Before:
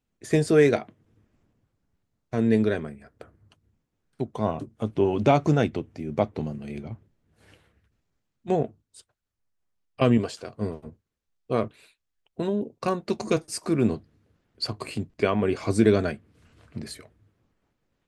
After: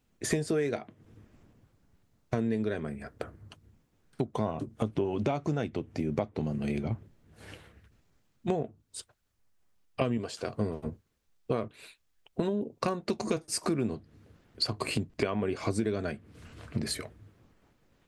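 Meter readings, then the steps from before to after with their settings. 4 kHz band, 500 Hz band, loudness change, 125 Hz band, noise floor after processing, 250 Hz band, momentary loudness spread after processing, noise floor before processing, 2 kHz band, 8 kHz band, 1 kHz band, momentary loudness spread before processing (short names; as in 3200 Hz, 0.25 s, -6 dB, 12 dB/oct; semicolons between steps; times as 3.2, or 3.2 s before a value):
-0.5 dB, -7.5 dB, -7.5 dB, -6.0 dB, -73 dBFS, -6.5 dB, 15 LU, -80 dBFS, -6.0 dB, +1.0 dB, -7.0 dB, 18 LU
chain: compressor 8:1, threshold -35 dBFS, peak gain reduction 21 dB; gain +8 dB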